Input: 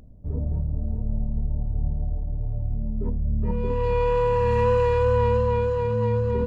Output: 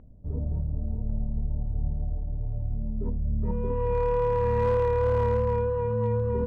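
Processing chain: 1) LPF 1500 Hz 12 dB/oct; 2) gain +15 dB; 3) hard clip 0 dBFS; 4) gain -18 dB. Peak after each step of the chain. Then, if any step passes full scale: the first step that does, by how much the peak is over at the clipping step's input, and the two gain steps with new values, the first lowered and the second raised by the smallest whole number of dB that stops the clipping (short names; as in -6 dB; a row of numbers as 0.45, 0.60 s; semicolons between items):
-10.5, +4.5, 0.0, -18.0 dBFS; step 2, 4.5 dB; step 2 +10 dB, step 4 -13 dB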